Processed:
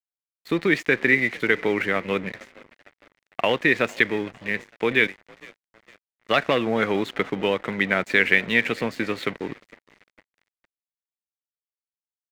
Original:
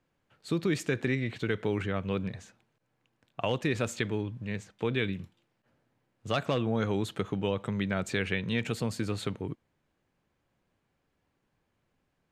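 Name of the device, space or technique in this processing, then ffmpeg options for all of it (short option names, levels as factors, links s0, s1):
pocket radio on a weak battery: -filter_complex "[0:a]asettb=1/sr,asplit=3[s0][s1][s2];[s0]atrim=end=5.074[s3];[s1]atrim=start=5.07:end=6.29,asetpts=PTS-STARTPTS,afade=t=in:d=0.004:c=qsin,afade=t=out:st=1.216:d=0.004:c=qsin,acrossover=split=410 2300:gain=0.0891 1 0.224[s4][s5][s6];[s4][s5][s6]amix=inputs=3:normalize=0[s7];[s2]atrim=start=6.286[s8];[s3][s7]acrossfade=d=0.004:c1=hsin:c2=qsin[s9];[s9][s8]acrossfade=d=0.004:c1=qsin:c2=hsin,asplit=6[s10][s11][s12][s13][s14][s15];[s11]adelay=455,afreqshift=46,volume=0.0944[s16];[s12]adelay=910,afreqshift=92,volume=0.0582[s17];[s13]adelay=1365,afreqshift=138,volume=0.0363[s18];[s14]adelay=1820,afreqshift=184,volume=0.0224[s19];[s15]adelay=2275,afreqshift=230,volume=0.014[s20];[s10][s16][s17][s18][s19][s20]amix=inputs=6:normalize=0,highpass=250,lowpass=4400,aeval=exprs='sgn(val(0))*max(abs(val(0))-0.00316,0)':c=same,equalizer=f=2000:t=o:w=0.53:g=11,volume=2.82"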